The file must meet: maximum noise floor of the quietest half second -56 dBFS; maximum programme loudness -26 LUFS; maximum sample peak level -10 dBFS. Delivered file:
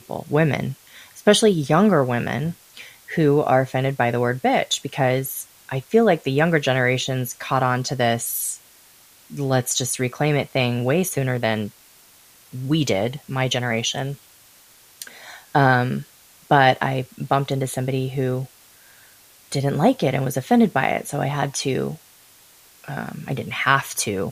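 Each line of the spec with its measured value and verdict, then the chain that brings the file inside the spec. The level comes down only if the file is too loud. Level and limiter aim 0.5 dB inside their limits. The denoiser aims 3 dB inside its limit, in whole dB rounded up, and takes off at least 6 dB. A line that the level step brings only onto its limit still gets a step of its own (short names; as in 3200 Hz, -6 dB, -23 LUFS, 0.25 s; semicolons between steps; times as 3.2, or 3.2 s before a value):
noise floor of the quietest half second -51 dBFS: fail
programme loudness -21.0 LUFS: fail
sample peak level -2.5 dBFS: fail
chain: gain -5.5 dB; limiter -10.5 dBFS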